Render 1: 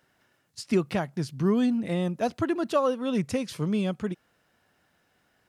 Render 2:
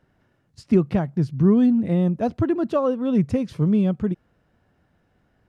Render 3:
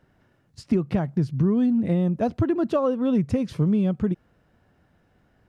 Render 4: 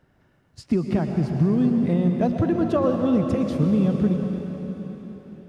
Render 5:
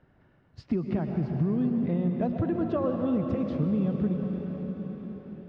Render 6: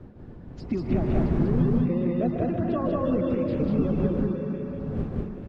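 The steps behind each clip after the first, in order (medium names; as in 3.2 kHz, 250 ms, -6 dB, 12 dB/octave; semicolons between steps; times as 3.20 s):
tilt EQ -3.5 dB/octave
compression, threshold -20 dBFS, peak gain reduction 8.5 dB; trim +2 dB
reverberation RT60 4.3 s, pre-delay 102 ms, DRR 3 dB
compression 1.5:1, threshold -34 dBFS, peak gain reduction 7 dB; distance through air 230 m
coarse spectral quantiser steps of 30 dB; wind noise 200 Hz -34 dBFS; loudspeakers at several distances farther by 53 m -10 dB, 66 m -1 dB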